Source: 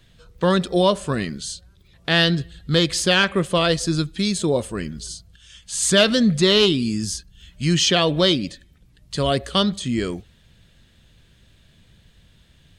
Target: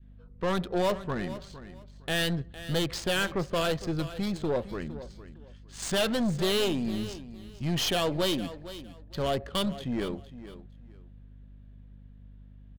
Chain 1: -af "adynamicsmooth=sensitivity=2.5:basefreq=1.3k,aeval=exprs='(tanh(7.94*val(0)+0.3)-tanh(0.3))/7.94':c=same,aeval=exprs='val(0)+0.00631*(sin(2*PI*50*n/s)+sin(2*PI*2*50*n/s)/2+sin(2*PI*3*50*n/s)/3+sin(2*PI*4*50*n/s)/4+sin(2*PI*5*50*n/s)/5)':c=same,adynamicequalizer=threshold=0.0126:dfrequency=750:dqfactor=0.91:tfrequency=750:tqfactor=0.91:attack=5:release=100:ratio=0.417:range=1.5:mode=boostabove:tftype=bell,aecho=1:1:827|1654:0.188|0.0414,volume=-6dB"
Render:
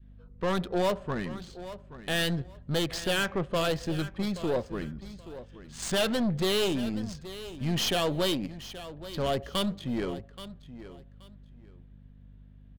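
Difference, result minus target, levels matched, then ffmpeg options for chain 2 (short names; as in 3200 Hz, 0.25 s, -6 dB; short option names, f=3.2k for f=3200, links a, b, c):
echo 0.368 s late
-af "adynamicsmooth=sensitivity=2.5:basefreq=1.3k,aeval=exprs='(tanh(7.94*val(0)+0.3)-tanh(0.3))/7.94':c=same,aeval=exprs='val(0)+0.00631*(sin(2*PI*50*n/s)+sin(2*PI*2*50*n/s)/2+sin(2*PI*3*50*n/s)/3+sin(2*PI*4*50*n/s)/4+sin(2*PI*5*50*n/s)/5)':c=same,adynamicequalizer=threshold=0.0126:dfrequency=750:dqfactor=0.91:tfrequency=750:tqfactor=0.91:attack=5:release=100:ratio=0.417:range=1.5:mode=boostabove:tftype=bell,aecho=1:1:459|918:0.188|0.0414,volume=-6dB"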